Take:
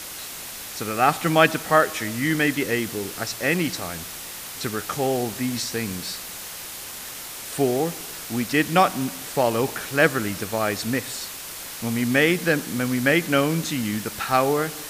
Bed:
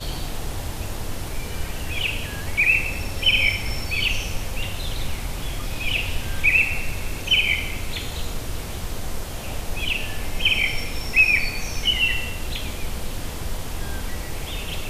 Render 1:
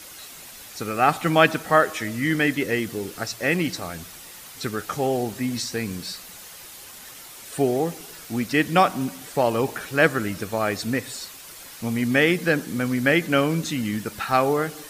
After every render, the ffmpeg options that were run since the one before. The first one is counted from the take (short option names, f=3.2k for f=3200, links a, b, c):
-af "afftdn=nr=8:nf=-36"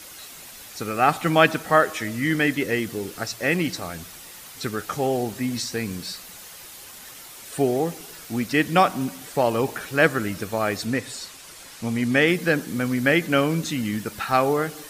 -filter_complex "[0:a]asettb=1/sr,asplit=3[a][b][c];[a]atrim=end=10.854[d];[b]atrim=start=10.85:end=12.28,asetpts=PTS-STARTPTS,afade=t=in:d=0.004:c=qsin,afade=t=out:st=1.426:d=0.004:c=qsin,lowpass=11k[e];[c]atrim=start=12.276[f];[d][e]acrossfade=d=0.004:c1=hsin:c2=qsin[g];[g][f]acrossfade=d=0.004:c1=qsin:c2=hsin"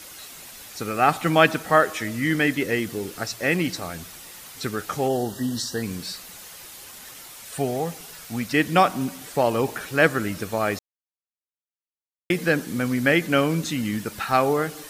-filter_complex "[0:a]asplit=3[a][b][c];[a]afade=t=out:st=5.08:d=0.02[d];[b]asuperstop=centerf=2300:order=20:qfactor=2.9,afade=t=in:st=5.08:d=0.02,afade=t=out:st=5.82:d=0.02[e];[c]afade=t=in:st=5.82:d=0.02[f];[d][e][f]amix=inputs=3:normalize=0,asettb=1/sr,asplit=3[g][h][i];[g]atrim=end=7.344[j];[h]atrim=start=7.34:end=8.54,asetpts=PTS-STARTPTS,afade=t=in:d=0.004:c=qsin,afade=t=out:st=1.196:d=0.004:c=qsin,equalizer=f=340:t=o:w=0.61:g=-9.5[k];[i]atrim=start=8.536[l];[j][k]acrossfade=d=0.004:c1=hsin:c2=qsin[m];[m][l]acrossfade=d=0.004:c1=qsin:c2=hsin,asplit=3[n][o][p];[n]atrim=end=10.79,asetpts=PTS-STARTPTS,afade=t=out:st=10.786:d=0.004:c=hsin[q];[o]atrim=start=10.79:end=12.3,asetpts=PTS-STARTPTS,volume=0[r];[p]atrim=start=12.3,asetpts=PTS-STARTPTS,afade=t=in:d=0.004:c=hsin[s];[q][r][s]concat=n=3:v=0:a=1"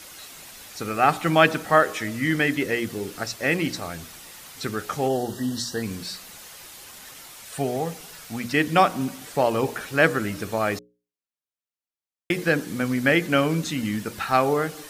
-af "highshelf=f=9.4k:g=-3.5,bandreject=f=60:t=h:w=6,bandreject=f=120:t=h:w=6,bandreject=f=180:t=h:w=6,bandreject=f=240:t=h:w=6,bandreject=f=300:t=h:w=6,bandreject=f=360:t=h:w=6,bandreject=f=420:t=h:w=6,bandreject=f=480:t=h:w=6,bandreject=f=540:t=h:w=6"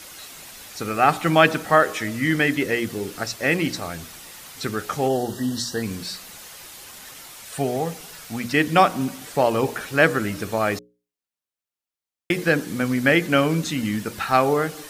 -af "volume=2dB,alimiter=limit=-3dB:level=0:latency=1"